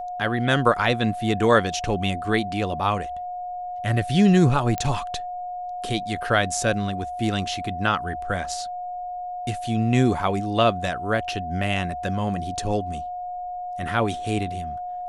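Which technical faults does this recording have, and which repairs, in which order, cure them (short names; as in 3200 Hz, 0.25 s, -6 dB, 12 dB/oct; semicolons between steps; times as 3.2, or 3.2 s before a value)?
tone 720 Hz -29 dBFS
4.78 pop -13 dBFS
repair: de-click; notch 720 Hz, Q 30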